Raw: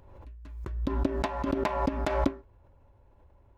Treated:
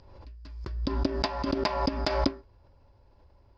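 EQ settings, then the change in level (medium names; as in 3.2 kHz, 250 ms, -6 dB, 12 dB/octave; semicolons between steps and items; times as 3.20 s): resonant low-pass 4.9 kHz, resonance Q 12; 0.0 dB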